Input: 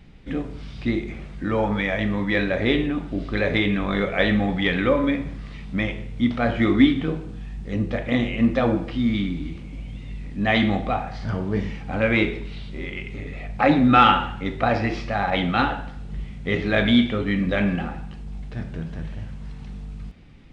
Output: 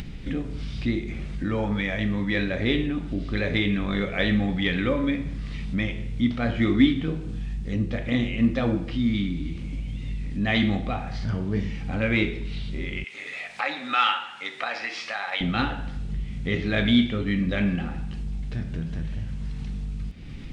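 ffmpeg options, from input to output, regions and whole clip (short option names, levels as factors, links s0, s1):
-filter_complex "[0:a]asettb=1/sr,asplit=3[s0][s1][s2];[s0]atrim=end=13.044[s3];[s1]atrim=start=13.04:end=15.41,asetpts=PTS-STARTPTS,afade=t=in:d=0.004:c=qsin,afade=t=out:st=2.366:d=0.004:c=qsin,highpass=930,asplit=2[s4][s5];[s5]adelay=13,volume=0.251[s6];[s4][s6]amix=inputs=2:normalize=0,atrim=end_sample=104517[s7];[s2]atrim=start=15.406[s8];[s3][s7]acrossfade=d=0.004:c1=hsin:c2=qsin[s9];[s9][s8]acrossfade=d=0.004:c1=qsin:c2=hsin,equalizer=f=810:w=0.56:g=-8,acompressor=mode=upward:threshold=0.0631:ratio=2.5"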